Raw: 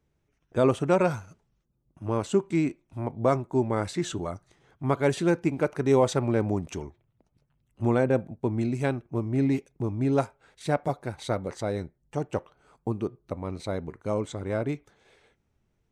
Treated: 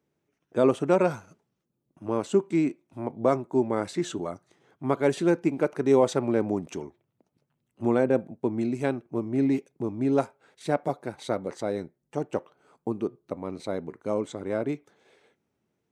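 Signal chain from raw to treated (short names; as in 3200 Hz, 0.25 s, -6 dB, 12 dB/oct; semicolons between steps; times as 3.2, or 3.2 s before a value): HPF 260 Hz 12 dB/oct; low shelf 380 Hz +9 dB; gain -2 dB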